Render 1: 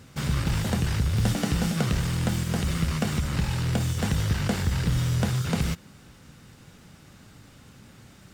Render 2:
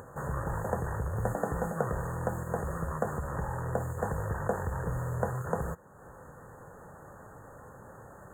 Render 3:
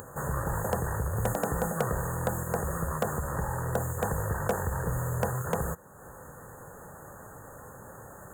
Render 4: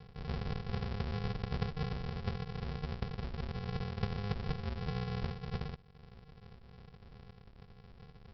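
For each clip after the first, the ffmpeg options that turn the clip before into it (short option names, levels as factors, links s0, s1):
-af "equalizer=f=250:t=o:w=1:g=-6,equalizer=f=500:t=o:w=1:g=12,equalizer=f=1000:t=o:w=1:g=10,equalizer=f=4000:t=o:w=1:g=3,equalizer=f=8000:t=o:w=1:g=-5,acompressor=mode=upward:threshold=0.0282:ratio=2.5,afftfilt=real='re*(1-between(b*sr/4096,1900,6400))':imag='im*(1-between(b*sr/4096,1900,6400))':win_size=4096:overlap=0.75,volume=0.355"
-filter_complex "[0:a]crystalizer=i=2:c=0,asplit=2[s0][s1];[s1]aeval=exprs='(mod(8.41*val(0)+1,2)-1)/8.41':c=same,volume=0.299[s2];[s0][s2]amix=inputs=2:normalize=0"
-af "flanger=delay=6.4:depth=6.3:regen=-50:speed=1.6:shape=sinusoidal,aresample=11025,acrusher=samples=36:mix=1:aa=0.000001,aresample=44100,volume=0.708"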